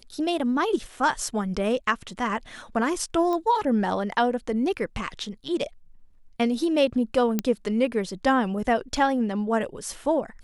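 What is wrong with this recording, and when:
3.33 s: pop -18 dBFS
7.39 s: pop -10 dBFS

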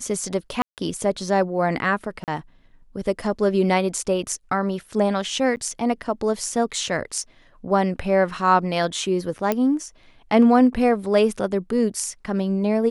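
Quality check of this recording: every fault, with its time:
0.62–0.78 s: dropout 158 ms
2.24–2.28 s: dropout 38 ms
5.56–5.57 s: dropout 9.5 ms
9.52 s: pop -8 dBFS

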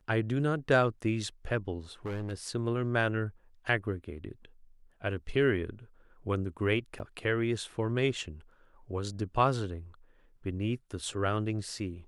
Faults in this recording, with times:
2.06–2.33 s: clipped -32 dBFS
6.99–7.00 s: dropout 9.1 ms

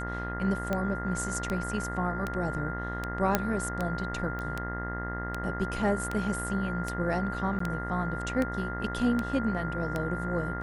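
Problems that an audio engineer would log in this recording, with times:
buzz 60 Hz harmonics 34 -36 dBFS
tick 78 rpm -17 dBFS
whine 1.4 kHz -36 dBFS
3.35 s: pop -8 dBFS
4.39 s: pop -24 dBFS
7.59–7.60 s: dropout 14 ms

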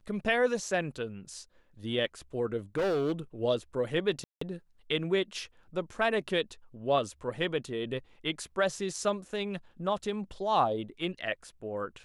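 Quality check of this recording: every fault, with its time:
2.77–3.12 s: clipped -25.5 dBFS
4.24–4.41 s: dropout 174 ms

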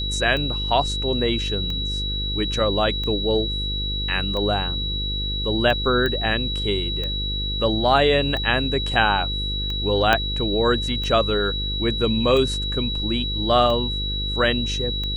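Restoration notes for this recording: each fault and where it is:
buzz 50 Hz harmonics 10 -28 dBFS
tick 45 rpm -17 dBFS
whine 3.9 kHz -26 dBFS
6.06 s: pop -12 dBFS
10.13 s: pop -4 dBFS

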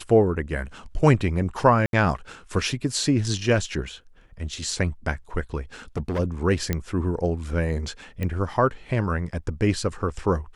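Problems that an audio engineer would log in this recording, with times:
1.86–1.93 s: dropout 72 ms
5.97–6.20 s: clipped -22.5 dBFS
6.73 s: pop -10 dBFS
8.23 s: pop -16 dBFS

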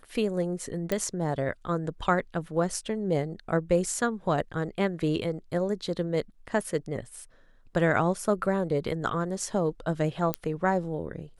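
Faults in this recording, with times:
0.92 s: pop -13 dBFS
10.34 s: pop -11 dBFS

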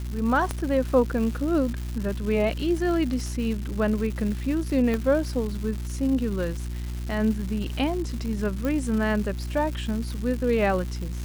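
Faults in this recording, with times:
crackle 380 per s -32 dBFS
hum 60 Hz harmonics 6 -31 dBFS
0.51 s: pop -13 dBFS
4.94 s: pop -14 dBFS
8.65 s: pop

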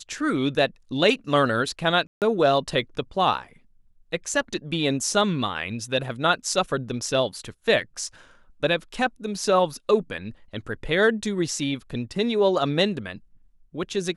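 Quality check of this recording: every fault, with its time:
2.07–2.22 s: dropout 148 ms

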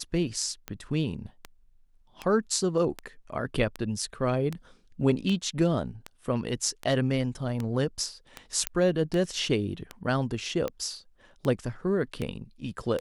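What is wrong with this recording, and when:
tick 78 rpm -18 dBFS
8.67 s: pop -8 dBFS

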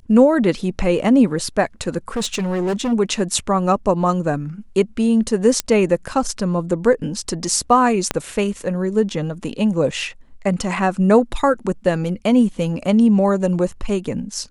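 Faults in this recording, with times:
2.16–2.93 s: clipped -17.5 dBFS
5.60 s: pop -3 dBFS
8.11 s: pop -4 dBFS

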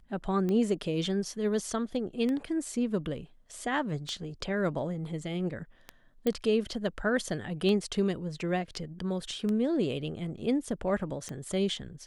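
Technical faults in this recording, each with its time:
tick 33 1/3 rpm -21 dBFS
6.27 s: pop -16 dBFS

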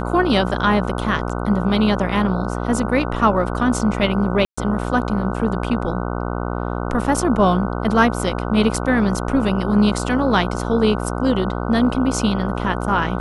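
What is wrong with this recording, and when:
buzz 60 Hz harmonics 25 -24 dBFS
4.45–4.58 s: dropout 125 ms

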